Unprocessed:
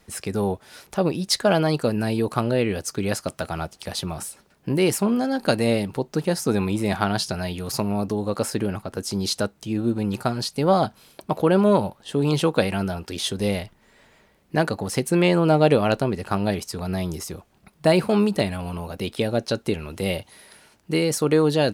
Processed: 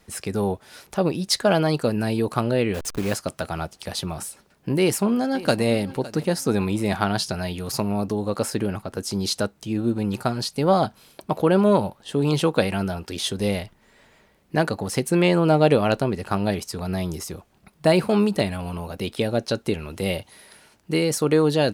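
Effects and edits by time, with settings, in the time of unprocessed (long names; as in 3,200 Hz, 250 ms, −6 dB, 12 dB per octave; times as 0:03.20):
0:02.74–0:03.15: hold until the input has moved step −30.5 dBFS
0:04.78–0:05.67: delay throw 560 ms, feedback 25%, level −17.5 dB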